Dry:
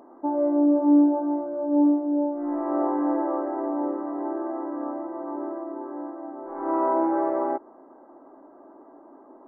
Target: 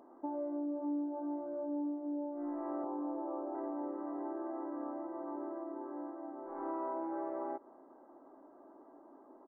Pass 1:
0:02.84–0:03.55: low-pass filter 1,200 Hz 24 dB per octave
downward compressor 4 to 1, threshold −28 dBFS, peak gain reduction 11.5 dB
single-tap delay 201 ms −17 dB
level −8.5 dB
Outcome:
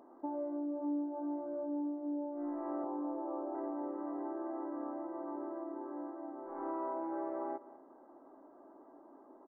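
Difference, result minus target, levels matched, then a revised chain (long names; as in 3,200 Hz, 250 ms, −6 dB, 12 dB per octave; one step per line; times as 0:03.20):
echo-to-direct +9 dB
0:02.84–0:03.55: low-pass filter 1,200 Hz 24 dB per octave
downward compressor 4 to 1, threshold −28 dBFS, peak gain reduction 11.5 dB
single-tap delay 201 ms −26 dB
level −8.5 dB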